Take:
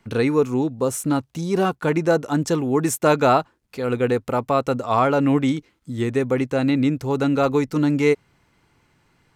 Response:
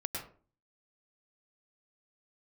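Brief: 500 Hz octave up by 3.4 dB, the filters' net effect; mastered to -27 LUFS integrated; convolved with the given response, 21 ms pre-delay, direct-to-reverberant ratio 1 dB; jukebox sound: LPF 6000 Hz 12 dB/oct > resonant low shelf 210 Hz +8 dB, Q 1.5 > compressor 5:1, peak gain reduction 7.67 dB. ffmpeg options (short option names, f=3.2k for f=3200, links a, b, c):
-filter_complex "[0:a]equalizer=f=500:t=o:g=5.5,asplit=2[a][b];[1:a]atrim=start_sample=2205,adelay=21[c];[b][c]afir=irnorm=-1:irlink=0,volume=-3dB[d];[a][d]amix=inputs=2:normalize=0,lowpass=6k,lowshelf=f=210:t=q:w=1.5:g=8,acompressor=threshold=-13dB:ratio=5,volume=-9dB"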